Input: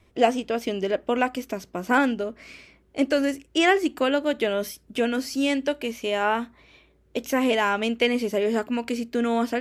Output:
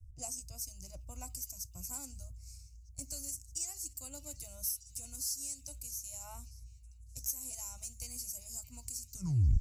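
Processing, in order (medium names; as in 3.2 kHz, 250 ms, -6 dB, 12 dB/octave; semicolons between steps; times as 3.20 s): tape stop on the ending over 0.48 s; inverse Chebyshev band-stop 200–3500 Hz, stop band 40 dB; compression 2.5:1, threshold -51 dBFS, peak gain reduction 20 dB; saturation -37 dBFS, distortion -21 dB; repeats whose band climbs or falls 626 ms, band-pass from 2.9 kHz, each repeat 0.7 oct, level -10.5 dB; three bands expanded up and down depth 70%; trim +12 dB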